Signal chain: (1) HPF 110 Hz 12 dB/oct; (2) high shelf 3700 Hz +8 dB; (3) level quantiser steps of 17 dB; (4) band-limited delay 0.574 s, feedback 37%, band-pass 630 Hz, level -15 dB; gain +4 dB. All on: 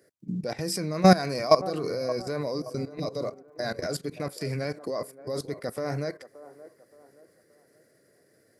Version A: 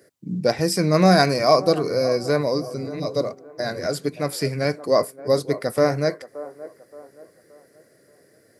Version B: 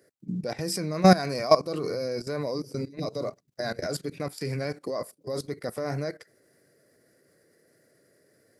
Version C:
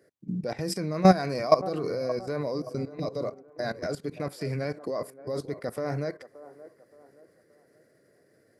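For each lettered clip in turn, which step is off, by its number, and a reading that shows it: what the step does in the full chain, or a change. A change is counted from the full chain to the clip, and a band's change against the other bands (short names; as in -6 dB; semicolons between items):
3, crest factor change -4.0 dB; 4, echo-to-direct -18.5 dB to none; 2, 8 kHz band -4.5 dB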